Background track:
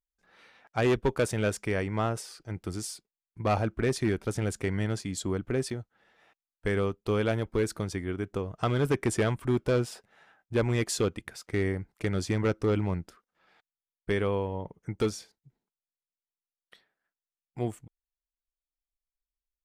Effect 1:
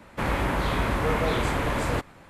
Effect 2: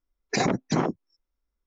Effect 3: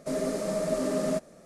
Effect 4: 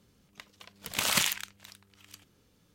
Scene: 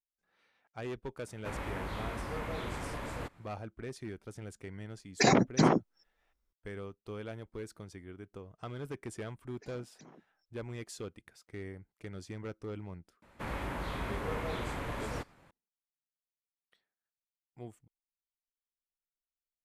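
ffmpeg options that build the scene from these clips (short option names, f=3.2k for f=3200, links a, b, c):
-filter_complex "[1:a]asplit=2[a][b];[2:a]asplit=2[c][d];[0:a]volume=-15dB[e];[d]acompressor=threshold=-40dB:ratio=5:attack=0.2:release=273:knee=1:detection=peak[f];[a]atrim=end=2.29,asetpts=PTS-STARTPTS,volume=-13.5dB,afade=t=in:d=0.004:c=hsin,afade=t=out:st=2.286:d=0.004:c=hsin,adelay=1270[g];[c]atrim=end=1.66,asetpts=PTS-STARTPTS,afade=t=in:d=0.004:c=hsin,afade=t=out:st=1.656:d=0.004:c=hsin,adelay=4870[h];[f]atrim=end=1.66,asetpts=PTS-STARTPTS,volume=-12dB,afade=t=in:d=0.004:c=hsin,afade=t=out:st=1.656:d=0.004:c=hsin,adelay=9290[i];[b]atrim=end=2.29,asetpts=PTS-STARTPTS,volume=-12dB,afade=t=in:d=0.004:c=hsin,afade=t=out:st=2.286:d=0.004:c=hsin,adelay=13220[j];[e][g][h][i][j]amix=inputs=5:normalize=0"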